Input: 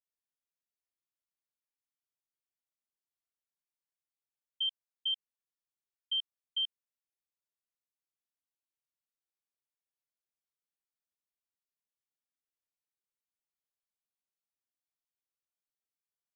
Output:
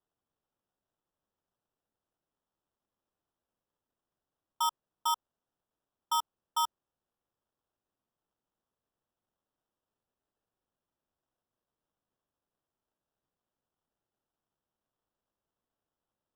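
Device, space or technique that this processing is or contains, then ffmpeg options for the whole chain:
crushed at another speed: -af "asetrate=22050,aresample=44100,acrusher=samples=40:mix=1:aa=0.000001,asetrate=88200,aresample=44100,volume=1.5"

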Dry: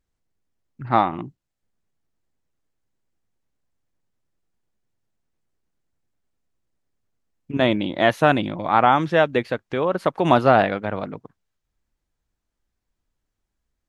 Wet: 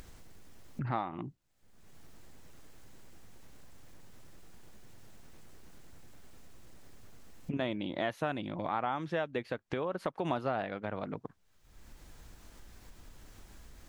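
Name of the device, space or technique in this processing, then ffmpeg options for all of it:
upward and downward compression: -af "acompressor=mode=upward:threshold=0.1:ratio=2.5,acompressor=threshold=0.0447:ratio=3,volume=0.501"

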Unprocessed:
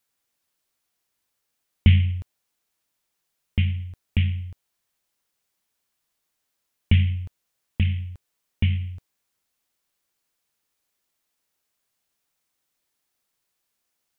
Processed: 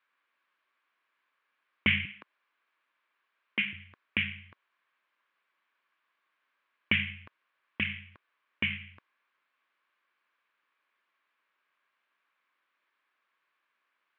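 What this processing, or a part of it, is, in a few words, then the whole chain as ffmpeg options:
phone earpiece: -filter_complex "[0:a]asettb=1/sr,asplit=3[s0][s1][s2];[s0]atrim=end=2.054[s3];[s1]atrim=start=2.05:end=3.73,asetpts=PTS-STARTPTS,afade=t=in:d=0.004:c=qsin,afade=t=out:st=1.676:d=0.004:c=qsin,highpass=f=180:w=0.5412,highpass=f=180:w=1.3066[s4];[s2]atrim=start=3.726[s5];[s3][s4]acrossfade=d=0.004:c1=hsin:c2=qsin[s6];[s6][s5]acrossfade=d=0.004:c1=qsin:c2=hsin,highpass=380,equalizer=f=450:t=q:w=4:g=-4,equalizer=f=760:t=q:w=4:g=-6,equalizer=f=1100:t=q:w=4:g=10,equalizer=f=1600:t=q:w=4:g=8,equalizer=f=2300:t=q:w=4:g=5,lowpass=f=3100:w=0.5412,lowpass=f=3100:w=1.3066,volume=1.33"

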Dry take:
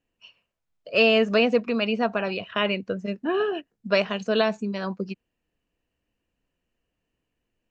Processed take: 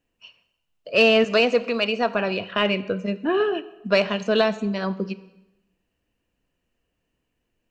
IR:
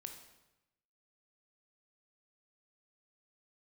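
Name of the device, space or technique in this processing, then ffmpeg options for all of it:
saturated reverb return: -filter_complex "[0:a]asettb=1/sr,asplit=3[s0][s1][s2];[s0]atrim=end=1.244[s3];[s1]atrim=start=1.24:end=2.15,asetpts=PTS-STARTPTS,afade=t=in:d=0.004:c=qsin,afade=t=out:st=0.906:d=0.004:c=qsin,bass=f=250:g=-10,treble=f=4000:g=6[s4];[s2]atrim=start=2.146[s5];[s3][s4]acrossfade=d=0.004:c1=hsin:c2=qsin[s6];[s6][s5]acrossfade=d=0.004:c1=qsin:c2=hsin,asplit=2[s7][s8];[1:a]atrim=start_sample=2205[s9];[s8][s9]afir=irnorm=-1:irlink=0,asoftclip=type=tanh:threshold=0.0794,volume=0.891[s10];[s7][s10]amix=inputs=2:normalize=0"

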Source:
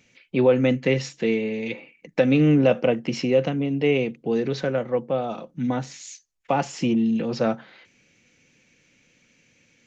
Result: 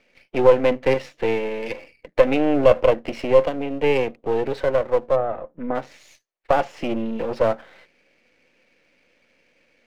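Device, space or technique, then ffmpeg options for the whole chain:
crystal radio: -filter_complex "[0:a]highpass=330,lowpass=2600,aeval=exprs='if(lt(val(0),0),0.251*val(0),val(0))':c=same,asplit=3[s0][s1][s2];[s0]afade=t=out:st=5.15:d=0.02[s3];[s1]lowpass=1500,afade=t=in:st=5.15:d=0.02,afade=t=out:st=5.74:d=0.02[s4];[s2]afade=t=in:st=5.74:d=0.02[s5];[s3][s4][s5]amix=inputs=3:normalize=0,equalizer=f=580:w=2.4:g=6,volume=1.78"

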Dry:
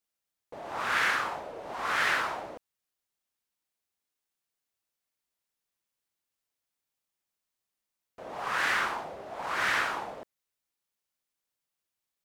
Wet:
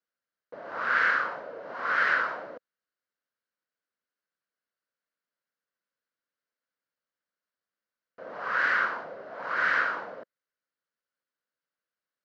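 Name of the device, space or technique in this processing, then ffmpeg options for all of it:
kitchen radio: -af "highpass=180,equalizer=f=360:t=q:w=4:g=-4,equalizer=f=520:t=q:w=4:g=5,equalizer=f=820:t=q:w=4:g=-8,equalizer=f=1500:t=q:w=4:g=8,equalizer=f=2500:t=q:w=4:g=-7,equalizer=f=3500:t=q:w=4:g=-9,lowpass=f=4300:w=0.5412,lowpass=f=4300:w=1.3066"

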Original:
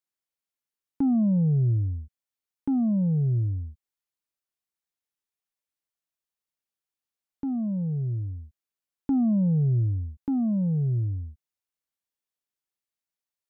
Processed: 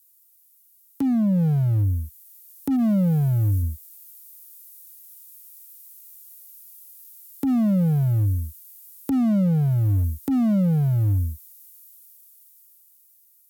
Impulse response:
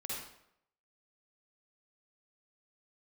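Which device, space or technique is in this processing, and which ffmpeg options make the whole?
FM broadcast chain: -filter_complex "[0:a]asplit=3[s0][s1][s2];[s0]afade=t=out:st=2.75:d=0.02[s3];[s1]tiltshelf=f=1200:g=-3.5,afade=t=in:st=2.75:d=0.02,afade=t=out:st=3.61:d=0.02[s4];[s2]afade=t=in:st=3.61:d=0.02[s5];[s3][s4][s5]amix=inputs=3:normalize=0,highpass=f=68:w=0.5412,highpass=f=68:w=1.3066,dynaudnorm=f=590:g=7:m=3.98,acrossover=split=84|1000[s6][s7][s8];[s6]acompressor=threshold=0.0282:ratio=4[s9];[s7]acompressor=threshold=0.1:ratio=4[s10];[s8]acompressor=threshold=0.00141:ratio=4[s11];[s9][s10][s11]amix=inputs=3:normalize=0,aemphasis=mode=production:type=75fm,alimiter=limit=0.126:level=0:latency=1:release=62,asoftclip=type=hard:threshold=0.1,lowpass=f=15000:w=0.5412,lowpass=f=15000:w=1.3066,aemphasis=mode=production:type=75fm,volume=1.5"

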